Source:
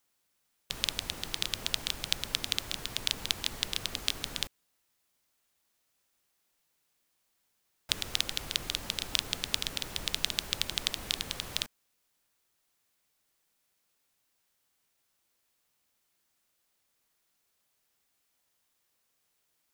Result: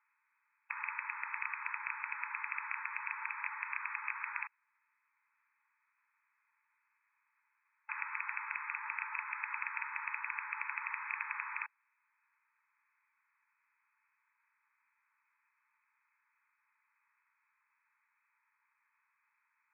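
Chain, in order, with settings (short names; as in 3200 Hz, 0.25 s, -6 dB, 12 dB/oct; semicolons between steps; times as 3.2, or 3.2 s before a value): hard clip -14 dBFS, distortion -9 dB; brick-wall FIR band-pass 840–2600 Hz; gain +8 dB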